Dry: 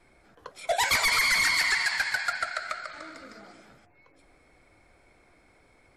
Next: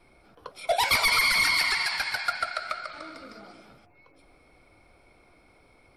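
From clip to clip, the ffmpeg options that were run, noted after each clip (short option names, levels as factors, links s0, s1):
-af "superequalizer=11b=0.447:15b=0.316,volume=1.26"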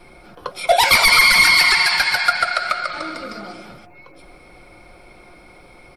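-filter_complex "[0:a]aecho=1:1:5.6:0.36,asplit=2[s0][s1];[s1]alimiter=limit=0.075:level=0:latency=1:release=106,volume=1.06[s2];[s0][s2]amix=inputs=2:normalize=0,volume=2.11"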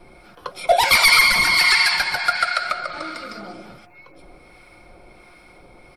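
-filter_complex "[0:a]acrossover=split=1000[s0][s1];[s0]aeval=exprs='val(0)*(1-0.5/2+0.5/2*cos(2*PI*1.4*n/s))':c=same[s2];[s1]aeval=exprs='val(0)*(1-0.5/2-0.5/2*cos(2*PI*1.4*n/s))':c=same[s3];[s2][s3]amix=inputs=2:normalize=0"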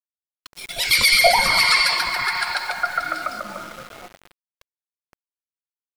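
-filter_complex "[0:a]acrossover=split=350|1800[s0][s1][s2];[s0]adelay=70[s3];[s1]adelay=550[s4];[s3][s4][s2]amix=inputs=3:normalize=0,aeval=exprs='val(0)*gte(abs(val(0)),0.0158)':c=same"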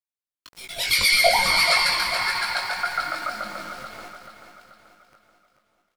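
-af "flanger=delay=18:depth=3.4:speed=1.7,aecho=1:1:434|868|1302|1736|2170:0.355|0.17|0.0817|0.0392|0.0188"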